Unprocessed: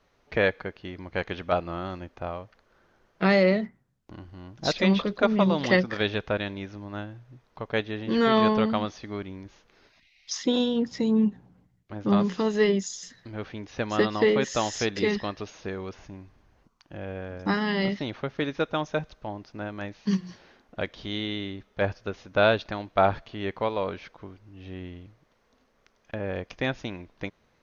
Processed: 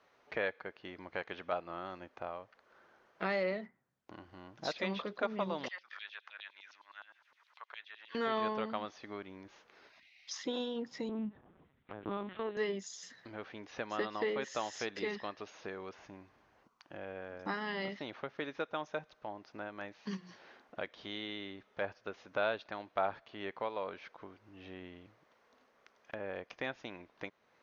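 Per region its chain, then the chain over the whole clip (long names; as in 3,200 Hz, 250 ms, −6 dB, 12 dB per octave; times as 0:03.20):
0:05.68–0:08.15: downward compressor 2 to 1, threshold −49 dBFS + auto-filter high-pass saw down 9.7 Hz 940–4,300 Hz
0:11.09–0:12.57: mu-law and A-law mismatch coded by mu + linear-prediction vocoder at 8 kHz pitch kept
whole clip: high-pass filter 760 Hz 6 dB per octave; high-shelf EQ 3,100 Hz −11 dB; downward compressor 1.5 to 1, threshold −55 dBFS; level +4 dB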